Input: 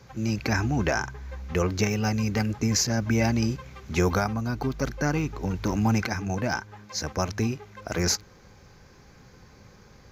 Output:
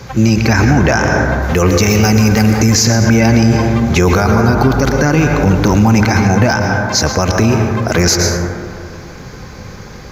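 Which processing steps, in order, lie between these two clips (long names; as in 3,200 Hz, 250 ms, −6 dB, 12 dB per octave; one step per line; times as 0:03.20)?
0:01.42–0:02.75: high-shelf EQ 6,600 Hz +9.5 dB
on a send at −6.5 dB: convolution reverb RT60 2.3 s, pre-delay 103 ms
on the sum: boost into a limiter +20.5 dB
level −1 dB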